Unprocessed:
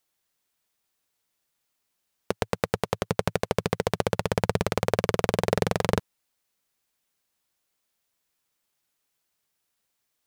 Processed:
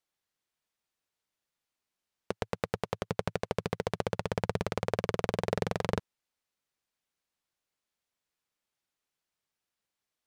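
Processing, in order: high shelf 9400 Hz -11.5 dB; gain -6.5 dB

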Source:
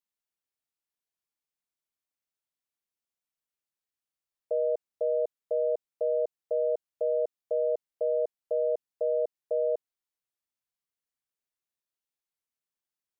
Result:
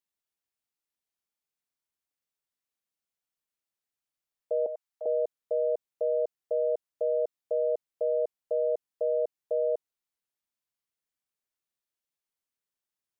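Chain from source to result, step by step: 4.66–5.06 HPF 720 Hz 24 dB/oct

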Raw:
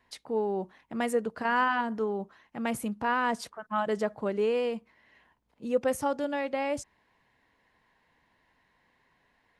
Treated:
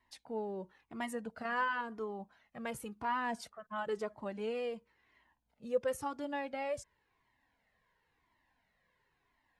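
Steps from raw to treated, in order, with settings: cascading flanger falling 0.96 Hz; gain -3.5 dB

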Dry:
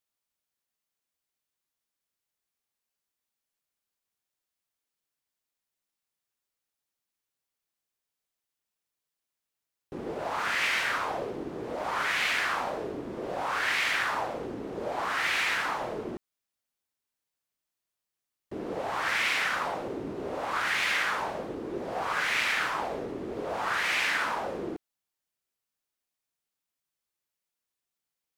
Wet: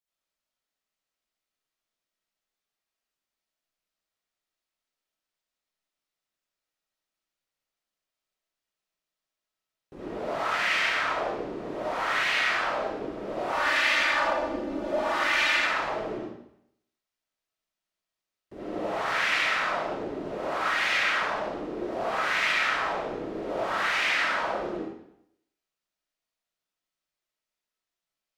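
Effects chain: 13.48–15.57 comb 3.4 ms, depth 86%; reverb RT60 0.75 s, pre-delay 30 ms, DRR -9.5 dB; gain -7.5 dB

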